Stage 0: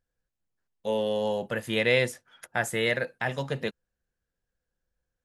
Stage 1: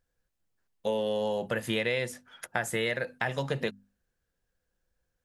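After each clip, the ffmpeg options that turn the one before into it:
ffmpeg -i in.wav -af "bandreject=frequency=50:width_type=h:width=6,bandreject=frequency=100:width_type=h:width=6,bandreject=frequency=150:width_type=h:width=6,bandreject=frequency=200:width_type=h:width=6,bandreject=frequency=250:width_type=h:width=6,acompressor=threshold=-30dB:ratio=6,volume=4dB" out.wav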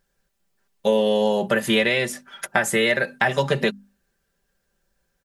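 ffmpeg -i in.wav -af "lowshelf=frequency=77:gain=-7,aecho=1:1:5.1:0.65,volume=9dB" out.wav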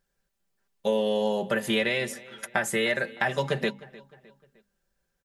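ffmpeg -i in.wav -filter_complex "[0:a]asplit=2[link_01][link_02];[link_02]adelay=306,lowpass=frequency=4500:poles=1,volume=-20dB,asplit=2[link_03][link_04];[link_04]adelay=306,lowpass=frequency=4500:poles=1,volume=0.46,asplit=2[link_05][link_06];[link_06]adelay=306,lowpass=frequency=4500:poles=1,volume=0.46[link_07];[link_01][link_03][link_05][link_07]amix=inputs=4:normalize=0,volume=-6dB" out.wav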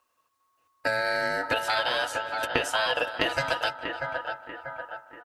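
ffmpeg -i in.wav -filter_complex "[0:a]asplit=2[link_01][link_02];[link_02]adelay=639,lowpass=frequency=1000:poles=1,volume=-8.5dB,asplit=2[link_03][link_04];[link_04]adelay=639,lowpass=frequency=1000:poles=1,volume=0.55,asplit=2[link_05][link_06];[link_06]adelay=639,lowpass=frequency=1000:poles=1,volume=0.55,asplit=2[link_07][link_08];[link_08]adelay=639,lowpass=frequency=1000:poles=1,volume=0.55,asplit=2[link_09][link_10];[link_10]adelay=639,lowpass=frequency=1000:poles=1,volume=0.55,asplit=2[link_11][link_12];[link_12]adelay=639,lowpass=frequency=1000:poles=1,volume=0.55,asplit=2[link_13][link_14];[link_14]adelay=639,lowpass=frequency=1000:poles=1,volume=0.55[link_15];[link_01][link_03][link_05][link_07][link_09][link_11][link_13][link_15]amix=inputs=8:normalize=0,acrossover=split=1700|7200[link_16][link_17][link_18];[link_16]acompressor=threshold=-29dB:ratio=4[link_19];[link_17]acompressor=threshold=-33dB:ratio=4[link_20];[link_18]acompressor=threshold=-55dB:ratio=4[link_21];[link_19][link_20][link_21]amix=inputs=3:normalize=0,aeval=exprs='val(0)*sin(2*PI*1100*n/s)':channel_layout=same,volume=7dB" out.wav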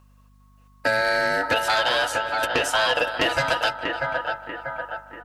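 ffmpeg -i in.wav -af "asoftclip=type=tanh:threshold=-17.5dB,aeval=exprs='val(0)+0.001*(sin(2*PI*50*n/s)+sin(2*PI*2*50*n/s)/2+sin(2*PI*3*50*n/s)/3+sin(2*PI*4*50*n/s)/4+sin(2*PI*5*50*n/s)/5)':channel_layout=same,volume=6.5dB" out.wav

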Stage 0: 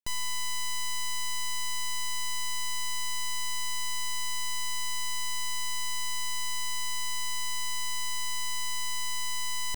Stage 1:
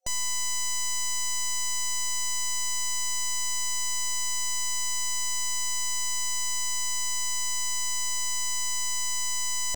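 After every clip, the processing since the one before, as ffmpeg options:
ffmpeg -i in.wav -af "superequalizer=8b=3.55:14b=1.58:15b=2.82" out.wav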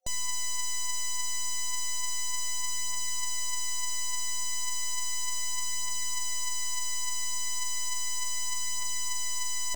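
ffmpeg -i in.wav -af "aphaser=in_gain=1:out_gain=1:delay=4.9:decay=0.38:speed=0.34:type=triangular,volume=-4dB" out.wav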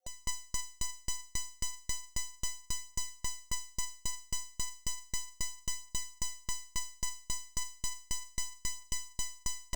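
ffmpeg -i in.wav -af "aeval=exprs='val(0)*pow(10,-37*if(lt(mod(3.7*n/s,1),2*abs(3.7)/1000),1-mod(3.7*n/s,1)/(2*abs(3.7)/1000),(mod(3.7*n/s,1)-2*abs(3.7)/1000)/(1-2*abs(3.7)/1000))/20)':channel_layout=same,volume=1dB" out.wav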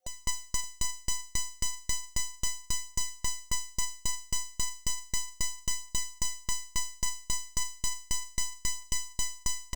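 ffmpeg -i in.wav -af "aecho=1:1:573:0.15,volume=4.5dB" out.wav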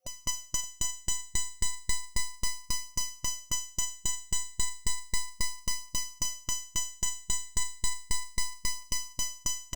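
ffmpeg -i in.wav -af "afftfilt=real='re*pow(10,7/40*sin(2*PI*(0.91*log(max(b,1)*sr/1024/100)/log(2)-(0.33)*(pts-256)/sr)))':imag='im*pow(10,7/40*sin(2*PI*(0.91*log(max(b,1)*sr/1024/100)/log(2)-(0.33)*(pts-256)/sr)))':win_size=1024:overlap=0.75" out.wav

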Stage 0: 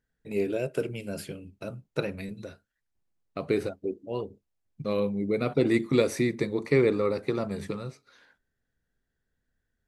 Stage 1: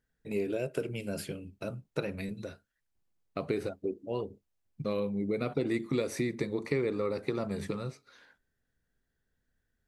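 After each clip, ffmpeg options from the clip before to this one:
ffmpeg -i in.wav -af "acompressor=threshold=-29dB:ratio=3" out.wav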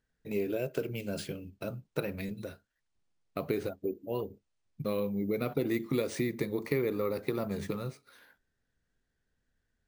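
ffmpeg -i in.wav -af "acrusher=samples=3:mix=1:aa=0.000001" out.wav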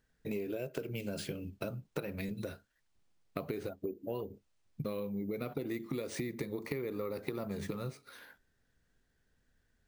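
ffmpeg -i in.wav -af "acompressor=threshold=-40dB:ratio=6,volume=5dB" out.wav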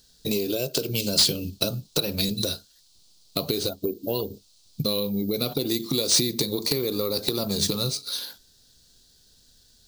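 ffmpeg -i in.wav -af "highshelf=frequency=2900:width_type=q:width=3:gain=13.5,aeval=exprs='0.251*sin(PI/2*2.24*val(0)/0.251)':channel_layout=same" out.wav

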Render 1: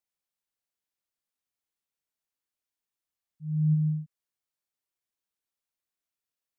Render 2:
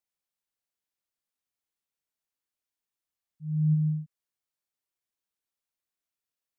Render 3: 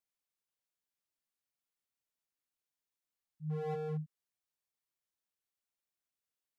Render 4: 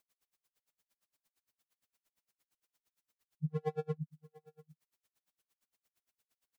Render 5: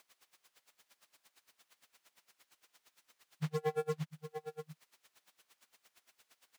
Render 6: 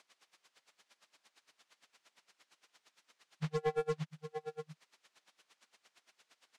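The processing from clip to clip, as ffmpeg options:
ffmpeg -i in.wav -af anull out.wav
ffmpeg -i in.wav -af "aeval=exprs='0.0376*(abs(mod(val(0)/0.0376+3,4)-2)-1)':channel_layout=same,volume=-3.5dB" out.wav
ffmpeg -i in.wav -af "acompressor=threshold=-43dB:ratio=6,aecho=1:1:702:0.0794,aeval=exprs='val(0)*pow(10,-39*(0.5-0.5*cos(2*PI*8.7*n/s))/20)':channel_layout=same,volume=14.5dB" out.wav
ffmpeg -i in.wav -filter_complex "[0:a]acompressor=threshold=-45dB:ratio=2.5,acrusher=bits=5:mode=log:mix=0:aa=0.000001,asplit=2[link_01][link_02];[link_02]highpass=frequency=720:poles=1,volume=16dB,asoftclip=type=tanh:threshold=-34dB[link_03];[link_01][link_03]amix=inputs=2:normalize=0,lowpass=frequency=4200:poles=1,volume=-6dB,volume=9dB" out.wav
ffmpeg -i in.wav -filter_complex "[0:a]highpass=140,lowpass=7000,asplit=2[link_01][link_02];[link_02]aeval=exprs='clip(val(0),-1,0.0188)':channel_layout=same,volume=-7dB[link_03];[link_01][link_03]amix=inputs=2:normalize=0,volume=-1.5dB" out.wav

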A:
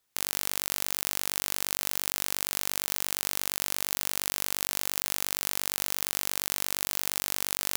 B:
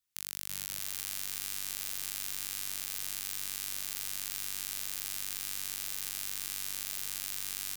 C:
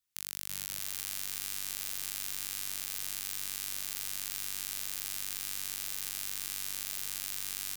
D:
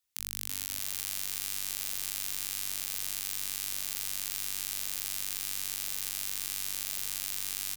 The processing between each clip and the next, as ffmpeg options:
ffmpeg -i in.wav -filter_complex "[0:a]equalizer=frequency=570:width_type=o:width=2.5:gain=-11.5,asplit=2[link_01][link_02];[link_02]aecho=0:1:340|646|921.4|1169|1392:0.631|0.398|0.251|0.158|0.1[link_03];[link_01][link_03]amix=inputs=2:normalize=0,volume=-8dB" out.wav
ffmpeg -i in.wav -af anull out.wav
ffmpeg -i in.wav -filter_complex "[0:a]equalizer=frequency=1500:width_type=o:width=0.77:gain=-2.5,acrossover=split=180[link_01][link_02];[link_01]adelay=30[link_03];[link_03][link_02]amix=inputs=2:normalize=0,volume=2.5dB" out.wav

